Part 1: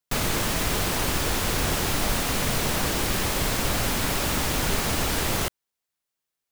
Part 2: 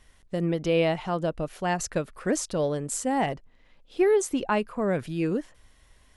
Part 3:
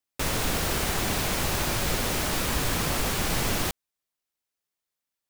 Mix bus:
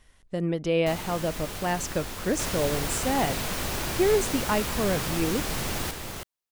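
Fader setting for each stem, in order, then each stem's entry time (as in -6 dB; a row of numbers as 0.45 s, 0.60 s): -11.5 dB, -1.0 dB, -4.5 dB; 0.75 s, 0.00 s, 2.20 s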